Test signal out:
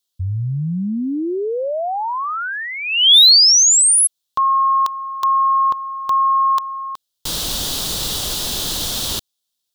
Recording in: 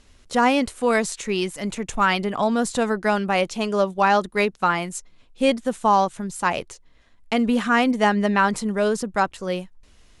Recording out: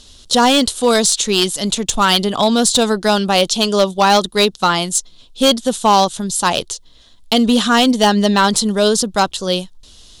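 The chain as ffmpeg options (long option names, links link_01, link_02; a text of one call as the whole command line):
ffmpeg -i in.wav -af "highshelf=frequency=2800:width_type=q:width=3:gain=8,asoftclip=type=hard:threshold=-12.5dB,volume=7dB" out.wav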